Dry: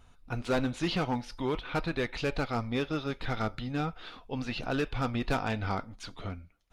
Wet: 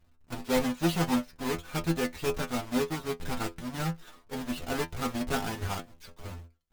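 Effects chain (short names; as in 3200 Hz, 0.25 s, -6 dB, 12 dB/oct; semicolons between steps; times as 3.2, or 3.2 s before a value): half-waves squared off; metallic resonator 82 Hz, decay 0.24 s, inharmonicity 0.002; upward expander 1.5:1, over -49 dBFS; gain +6.5 dB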